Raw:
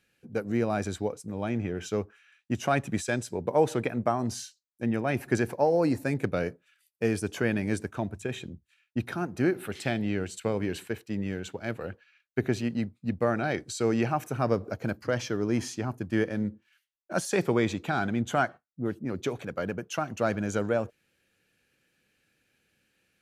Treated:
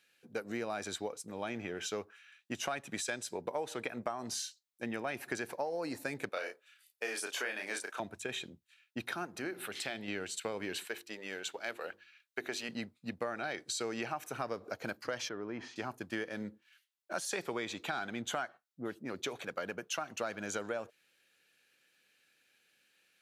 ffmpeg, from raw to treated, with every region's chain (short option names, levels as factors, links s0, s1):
-filter_complex "[0:a]asettb=1/sr,asplit=3[s0][s1][s2];[s0]atrim=end=6.294[s3];[s1]atrim=start=6.29:end=8,asetpts=PTS-STARTPTS,afade=t=in:d=0.004:c=qsin,afade=t=out:st=1.706:d=0.004:c=qsin,highpass=500,asplit=2[s4][s5];[s5]adelay=32,volume=0.631[s6];[s4][s6]amix=inputs=2:normalize=0,atrim=end_sample=75411[s7];[s2]atrim=start=7.996[s8];[s3][s7]acrossfade=d=0.004:c1=hsin:c2=qsin[s9];[s9][s8]acrossfade=d=0.004:c1=qsin:c2=hsin,asettb=1/sr,asplit=3[s10][s11][s12];[s10]atrim=end=9.314[s13];[s11]atrim=start=9.31:end=10.08,asetpts=PTS-STARTPTS,afade=t=in:d=0.004:c=qsin,afade=t=out:st=0.766:d=0.004:c=qsin,bandreject=f=60:t=h:w=6,bandreject=f=120:t=h:w=6,bandreject=f=180:t=h:w=6,bandreject=f=240:t=h:w=6,bandreject=f=300:t=h:w=6,acompressor=threshold=0.0141:ratio=1.5:attack=3.2:release=140:knee=1:detection=peak[s14];[s12]atrim=start=10.076[s15];[s13][s14]acrossfade=d=0.004:c1=hsin:c2=qsin[s16];[s16][s15]acrossfade=d=0.004:c1=qsin:c2=hsin,asettb=1/sr,asplit=3[s17][s18][s19];[s17]atrim=end=10.854[s20];[s18]atrim=start=10.85:end=12.69,asetpts=PTS-STARTPTS,afade=t=in:d=0.004:c=qsin,afade=t=out:st=1.836:d=0.004:c=qsin,bass=f=250:g=-13,treble=f=4000:g=2,bandreject=f=50:t=h:w=6,bandreject=f=100:t=h:w=6,bandreject=f=150:t=h:w=6,bandreject=f=200:t=h:w=6,bandreject=f=250:t=h:w=6,bandreject=f=300:t=h:w=6,bandreject=f=350:t=h:w=6[s21];[s19]atrim=start=12.686[s22];[s20][s21]acrossfade=d=0.004:c1=hsin:c2=qsin[s23];[s23][s22]acrossfade=d=0.004:c1=qsin:c2=hsin,asettb=1/sr,asplit=3[s24][s25][s26];[s24]atrim=end=15.294[s27];[s25]atrim=start=15.29:end=15.76,asetpts=PTS-STARTPTS,afade=t=in:d=0.004:c=qsin,afade=t=out:st=0.466:d=0.004:c=qsin,lowpass=2000,acompressor=threshold=0.0251:ratio=2:attack=3.2:release=140:knee=1:detection=peak[s28];[s26]atrim=start=15.756[s29];[s27][s28]acrossfade=d=0.004:c1=hsin:c2=qsin[s30];[s30][s29]acrossfade=d=0.004:c1=qsin:c2=hsin,highpass=f=840:p=1,equalizer=f=3800:t=o:w=0.52:g=3.5,acompressor=threshold=0.0178:ratio=6,volume=1.19"